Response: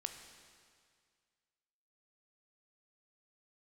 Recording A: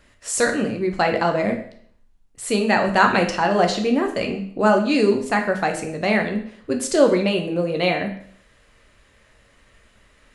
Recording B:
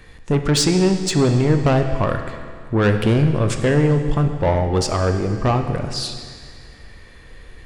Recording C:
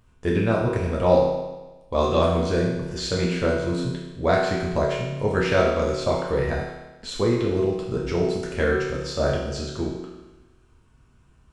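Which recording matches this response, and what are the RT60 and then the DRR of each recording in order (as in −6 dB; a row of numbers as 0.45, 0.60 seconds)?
B; 0.60, 2.0, 1.1 seconds; 3.0, 5.5, −4.0 decibels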